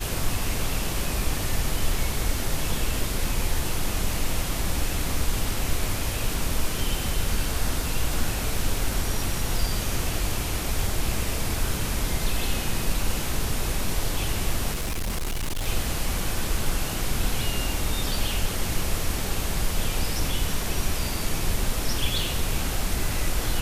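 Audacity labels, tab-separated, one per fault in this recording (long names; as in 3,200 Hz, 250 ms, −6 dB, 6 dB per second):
14.730000	15.680000	clipping −24 dBFS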